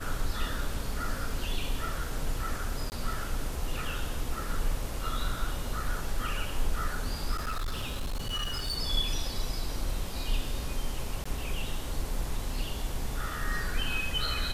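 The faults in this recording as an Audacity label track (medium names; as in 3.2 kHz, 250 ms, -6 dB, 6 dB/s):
2.900000	2.920000	dropout 19 ms
7.340000	8.780000	clipped -28.5 dBFS
11.240000	11.260000	dropout 15 ms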